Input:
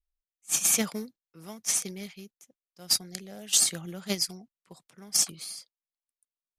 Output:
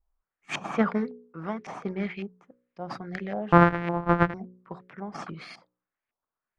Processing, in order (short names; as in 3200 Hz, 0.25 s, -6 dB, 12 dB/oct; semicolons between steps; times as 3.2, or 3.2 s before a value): 3.52–4.34 sample sorter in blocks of 256 samples; in parallel at +2 dB: compressor, threshold -32 dBFS, peak gain reduction 13.5 dB; on the sum: high shelf 5800 Hz -11 dB; de-hum 60.83 Hz, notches 9; LFO low-pass saw up 1.8 Hz 820–2300 Hz; gain +3 dB